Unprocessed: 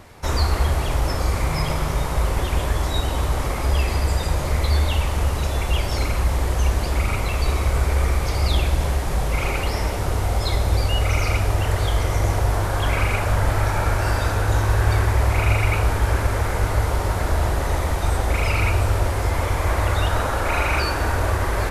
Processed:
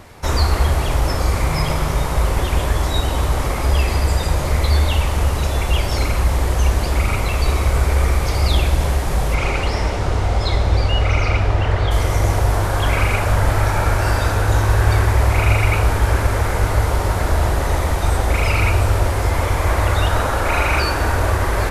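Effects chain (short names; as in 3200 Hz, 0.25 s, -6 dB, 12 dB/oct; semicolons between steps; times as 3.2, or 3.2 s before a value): 9.34–11.9 LPF 7900 Hz -> 3500 Hz 12 dB/oct; gain +3.5 dB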